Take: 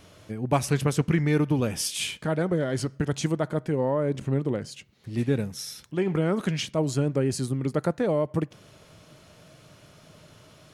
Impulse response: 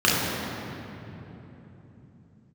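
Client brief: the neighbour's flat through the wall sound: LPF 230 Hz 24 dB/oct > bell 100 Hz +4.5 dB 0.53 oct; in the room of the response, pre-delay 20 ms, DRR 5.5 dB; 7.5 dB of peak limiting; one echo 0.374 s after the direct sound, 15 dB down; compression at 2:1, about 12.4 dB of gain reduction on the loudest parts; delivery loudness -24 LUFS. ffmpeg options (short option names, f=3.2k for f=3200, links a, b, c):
-filter_complex "[0:a]acompressor=threshold=-42dB:ratio=2,alimiter=level_in=5.5dB:limit=-24dB:level=0:latency=1,volume=-5.5dB,aecho=1:1:374:0.178,asplit=2[a][b];[1:a]atrim=start_sample=2205,adelay=20[c];[b][c]afir=irnorm=-1:irlink=0,volume=-26dB[d];[a][d]amix=inputs=2:normalize=0,lowpass=f=230:w=0.5412,lowpass=f=230:w=1.3066,equalizer=f=100:t=o:w=0.53:g=4.5,volume=15dB"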